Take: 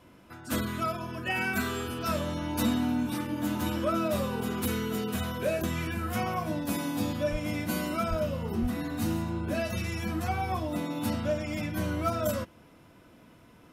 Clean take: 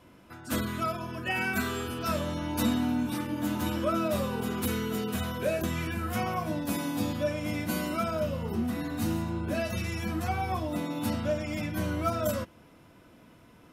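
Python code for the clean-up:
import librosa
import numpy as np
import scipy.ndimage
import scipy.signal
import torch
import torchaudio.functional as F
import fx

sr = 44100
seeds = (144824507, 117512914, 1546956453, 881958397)

y = fx.fix_declip(x, sr, threshold_db=-19.5)
y = fx.highpass(y, sr, hz=140.0, slope=24, at=(7.31, 7.43), fade=0.02)
y = fx.highpass(y, sr, hz=140.0, slope=24, at=(8.09, 8.21), fade=0.02)
y = fx.highpass(y, sr, hz=140.0, slope=24, at=(8.61, 8.73), fade=0.02)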